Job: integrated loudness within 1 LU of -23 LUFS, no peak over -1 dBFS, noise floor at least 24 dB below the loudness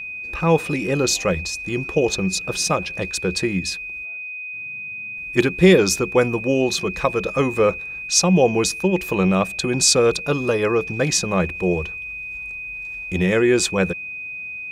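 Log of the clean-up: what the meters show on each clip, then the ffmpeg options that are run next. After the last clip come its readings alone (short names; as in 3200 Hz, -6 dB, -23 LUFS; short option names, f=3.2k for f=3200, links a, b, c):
steady tone 2500 Hz; tone level -29 dBFS; loudness -20.5 LUFS; peak -2.0 dBFS; loudness target -23.0 LUFS
-> -af "bandreject=f=2.5k:w=30"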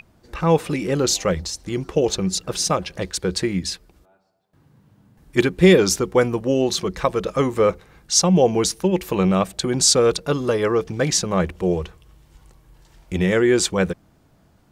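steady tone none; loudness -20.0 LUFS; peak -2.0 dBFS; loudness target -23.0 LUFS
-> -af "volume=-3dB"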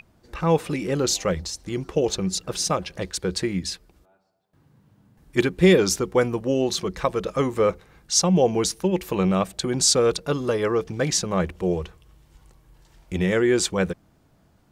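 loudness -23.0 LUFS; peak -5.0 dBFS; noise floor -61 dBFS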